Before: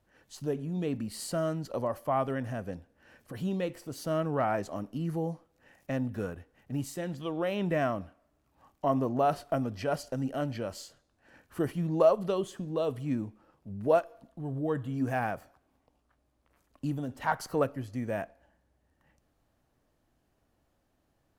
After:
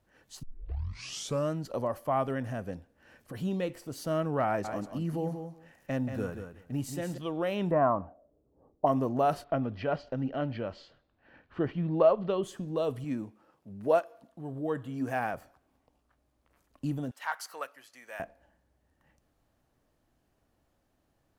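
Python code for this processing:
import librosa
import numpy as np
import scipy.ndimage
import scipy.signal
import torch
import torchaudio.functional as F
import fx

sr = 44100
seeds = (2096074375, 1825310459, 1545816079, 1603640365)

y = fx.echo_feedback(x, sr, ms=182, feedback_pct=15, wet_db=-8.0, at=(4.46, 7.18))
y = fx.envelope_lowpass(y, sr, base_hz=440.0, top_hz=1000.0, q=4.0, full_db=-29.5, direction='up', at=(7.7, 8.85), fade=0.02)
y = fx.lowpass(y, sr, hz=3800.0, slope=24, at=(9.44, 12.43))
y = fx.highpass(y, sr, hz=220.0, slope=6, at=(13.04, 15.34))
y = fx.highpass(y, sr, hz=1200.0, slope=12, at=(17.11, 18.2))
y = fx.edit(y, sr, fx.tape_start(start_s=0.43, length_s=1.08), tone=tone)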